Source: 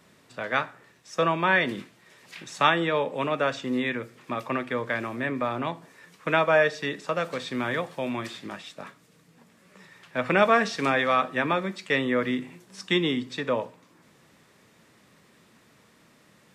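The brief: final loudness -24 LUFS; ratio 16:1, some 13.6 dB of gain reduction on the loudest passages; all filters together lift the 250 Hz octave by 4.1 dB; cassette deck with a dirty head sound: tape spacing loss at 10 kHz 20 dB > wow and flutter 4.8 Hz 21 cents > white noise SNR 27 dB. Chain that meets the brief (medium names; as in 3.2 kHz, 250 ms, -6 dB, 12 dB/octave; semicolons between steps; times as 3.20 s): peaking EQ 250 Hz +5.5 dB; compression 16:1, threshold -28 dBFS; tape spacing loss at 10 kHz 20 dB; wow and flutter 4.8 Hz 21 cents; white noise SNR 27 dB; trim +11.5 dB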